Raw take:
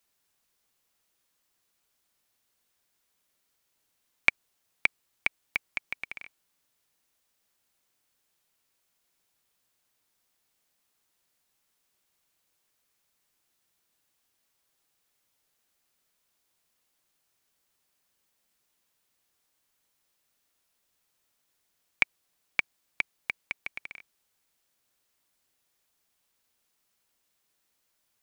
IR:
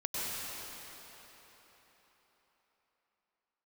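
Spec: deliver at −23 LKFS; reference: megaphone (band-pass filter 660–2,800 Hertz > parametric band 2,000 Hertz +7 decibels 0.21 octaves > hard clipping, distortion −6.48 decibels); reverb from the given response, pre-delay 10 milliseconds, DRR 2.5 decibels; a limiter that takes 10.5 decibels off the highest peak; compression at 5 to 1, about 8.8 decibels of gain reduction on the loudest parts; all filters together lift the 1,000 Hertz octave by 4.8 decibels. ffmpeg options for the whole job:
-filter_complex "[0:a]equalizer=frequency=1000:width_type=o:gain=7,acompressor=threshold=-28dB:ratio=5,alimiter=limit=-16.5dB:level=0:latency=1,asplit=2[link_01][link_02];[1:a]atrim=start_sample=2205,adelay=10[link_03];[link_02][link_03]afir=irnorm=-1:irlink=0,volume=-8.5dB[link_04];[link_01][link_04]amix=inputs=2:normalize=0,highpass=660,lowpass=2800,equalizer=frequency=2000:width_type=o:width=0.21:gain=7,asoftclip=type=hard:threshold=-30.5dB,volume=22.5dB"

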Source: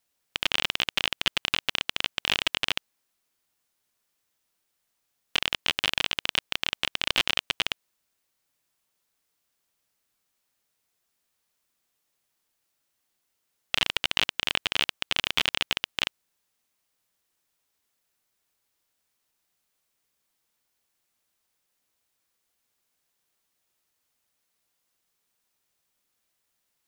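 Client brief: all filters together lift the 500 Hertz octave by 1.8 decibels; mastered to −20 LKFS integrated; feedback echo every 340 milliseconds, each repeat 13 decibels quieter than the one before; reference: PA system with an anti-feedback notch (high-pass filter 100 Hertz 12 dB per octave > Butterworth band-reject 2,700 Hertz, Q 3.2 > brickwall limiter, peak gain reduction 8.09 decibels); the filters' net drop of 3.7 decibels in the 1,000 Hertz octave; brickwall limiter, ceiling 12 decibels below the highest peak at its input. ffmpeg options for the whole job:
ffmpeg -i in.wav -af "equalizer=frequency=500:width_type=o:gain=4,equalizer=frequency=1000:width_type=o:gain=-6,alimiter=limit=-16.5dB:level=0:latency=1,highpass=100,asuperstop=centerf=2700:order=8:qfactor=3.2,aecho=1:1:340|680|1020:0.224|0.0493|0.0108,volume=26.5dB,alimiter=limit=-0.5dB:level=0:latency=1" out.wav

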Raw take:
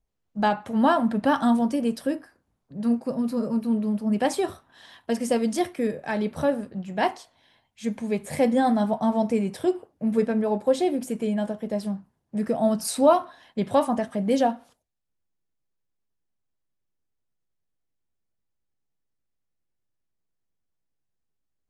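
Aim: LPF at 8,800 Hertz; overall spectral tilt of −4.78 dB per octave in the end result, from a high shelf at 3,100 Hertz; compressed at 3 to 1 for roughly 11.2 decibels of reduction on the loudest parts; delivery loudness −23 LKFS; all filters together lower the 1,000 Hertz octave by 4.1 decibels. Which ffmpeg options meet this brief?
ffmpeg -i in.wav -af "lowpass=8800,equalizer=frequency=1000:width_type=o:gain=-6.5,highshelf=frequency=3100:gain=7.5,acompressor=threshold=-31dB:ratio=3,volume=10.5dB" out.wav

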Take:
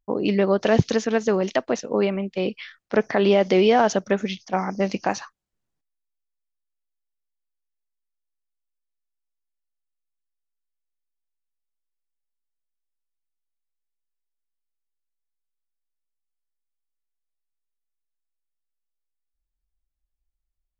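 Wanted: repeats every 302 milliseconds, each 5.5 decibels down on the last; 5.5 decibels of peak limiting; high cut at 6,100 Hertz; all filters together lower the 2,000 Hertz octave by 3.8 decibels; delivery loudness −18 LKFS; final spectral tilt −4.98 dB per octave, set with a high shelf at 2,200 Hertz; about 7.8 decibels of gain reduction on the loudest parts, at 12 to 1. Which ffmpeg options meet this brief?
ffmpeg -i in.wav -af "lowpass=6100,equalizer=frequency=2000:width_type=o:gain=-7,highshelf=frequency=2200:gain=4,acompressor=threshold=-19dB:ratio=12,alimiter=limit=-15dB:level=0:latency=1,aecho=1:1:302|604|906|1208|1510|1812|2114:0.531|0.281|0.149|0.079|0.0419|0.0222|0.0118,volume=8.5dB" out.wav

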